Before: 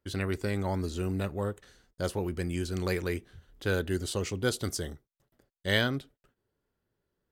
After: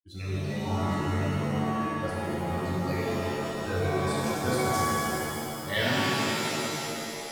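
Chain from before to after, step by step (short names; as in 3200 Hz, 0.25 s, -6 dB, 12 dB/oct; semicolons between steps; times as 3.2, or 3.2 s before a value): per-bin expansion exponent 2; vibrato 3.9 Hz 14 cents; shimmer reverb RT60 3.3 s, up +7 st, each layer -2 dB, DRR -8.5 dB; gain -4.5 dB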